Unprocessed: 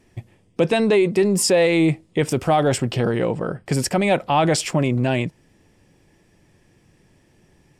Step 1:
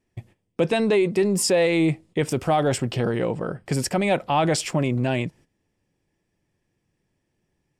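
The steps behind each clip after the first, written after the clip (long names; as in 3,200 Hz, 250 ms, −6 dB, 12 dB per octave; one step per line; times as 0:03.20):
noise gate −44 dBFS, range −14 dB
level −3 dB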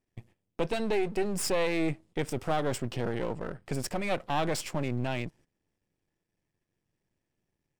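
gain on one half-wave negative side −12 dB
level −5.5 dB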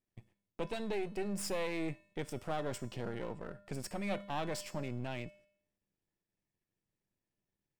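tuned comb filter 200 Hz, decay 0.65 s, harmonics odd, mix 70%
level +1.5 dB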